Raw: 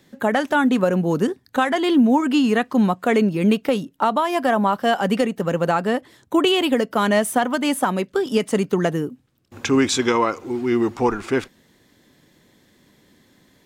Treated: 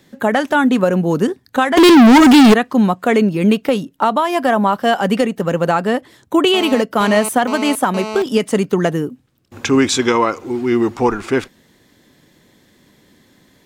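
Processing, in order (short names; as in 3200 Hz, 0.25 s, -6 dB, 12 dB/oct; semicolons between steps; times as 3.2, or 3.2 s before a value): 1.77–2.54 sample leveller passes 5; 6.54–8.22 GSM buzz -29 dBFS; gain +4 dB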